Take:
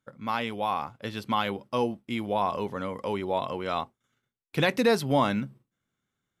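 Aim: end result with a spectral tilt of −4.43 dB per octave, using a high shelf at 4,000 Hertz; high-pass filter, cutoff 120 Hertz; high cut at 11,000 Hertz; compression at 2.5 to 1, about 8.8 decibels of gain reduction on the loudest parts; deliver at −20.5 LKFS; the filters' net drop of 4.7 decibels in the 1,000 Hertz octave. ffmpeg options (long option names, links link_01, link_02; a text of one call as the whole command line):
ffmpeg -i in.wav -af "highpass=120,lowpass=11000,equalizer=frequency=1000:width_type=o:gain=-5.5,highshelf=frequency=4000:gain=-5.5,acompressor=threshold=-32dB:ratio=2.5,volume=15.5dB" out.wav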